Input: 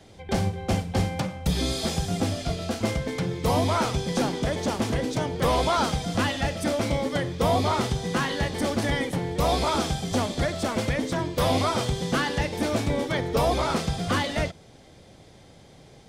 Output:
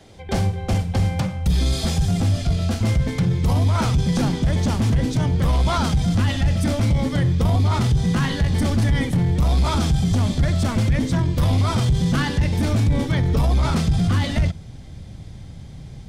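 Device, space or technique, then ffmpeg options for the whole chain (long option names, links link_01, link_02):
soft clipper into limiter: -af "asubboost=boost=7.5:cutoff=160,asoftclip=type=tanh:threshold=-8dB,alimiter=limit=-15.5dB:level=0:latency=1:release=12,volume=3dB"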